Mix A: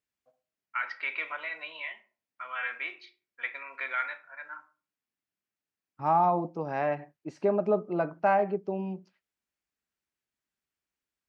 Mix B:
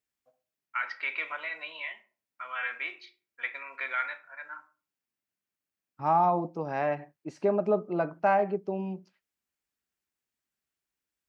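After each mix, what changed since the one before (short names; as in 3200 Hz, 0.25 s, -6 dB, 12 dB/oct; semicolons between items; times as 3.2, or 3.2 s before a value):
master: add high shelf 7900 Hz +8 dB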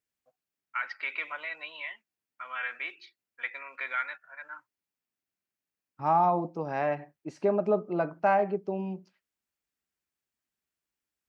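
reverb: off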